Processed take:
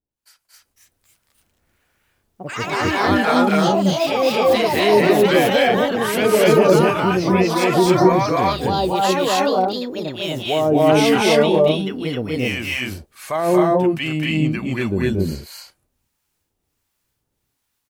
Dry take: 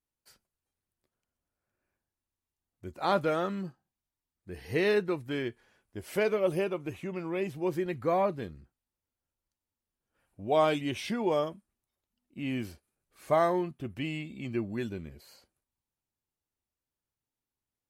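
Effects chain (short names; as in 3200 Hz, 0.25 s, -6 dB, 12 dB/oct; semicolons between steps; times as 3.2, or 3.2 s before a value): AGC gain up to 12 dB; limiter -12 dBFS, peak gain reduction 9 dB; harmonic tremolo 1.4 Hz, depth 100%, crossover 810 Hz; echoes that change speed 0.327 s, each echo +4 st, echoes 3; on a send: loudspeakers at several distances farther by 79 m -3 dB, 90 m 0 dB; on the sum: gain +6 dB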